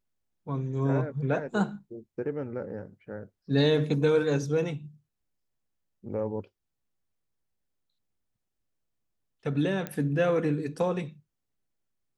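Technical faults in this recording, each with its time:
0:09.87: click −19 dBFS

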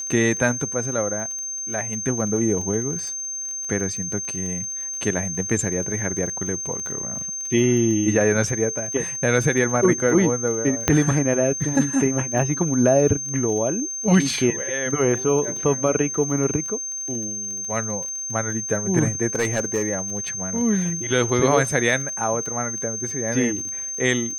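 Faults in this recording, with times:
surface crackle 29 per second −30 dBFS
whistle 6,300 Hz −27 dBFS
0:10.88: click −2 dBFS
0:19.35–0:19.87: clipping −16 dBFS

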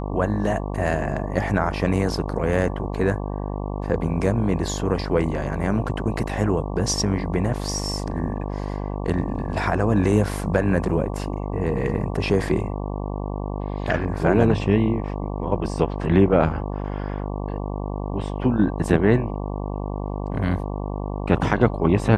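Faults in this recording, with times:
mains buzz 50 Hz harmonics 23 −28 dBFS

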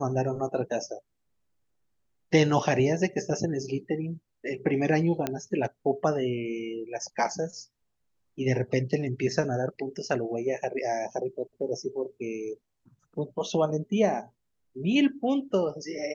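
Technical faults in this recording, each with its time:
0:05.27: click −13 dBFS

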